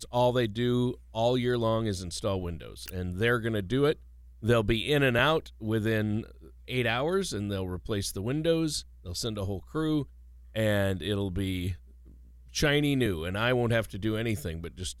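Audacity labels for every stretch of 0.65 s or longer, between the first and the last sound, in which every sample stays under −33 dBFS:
11.730000	12.550000	silence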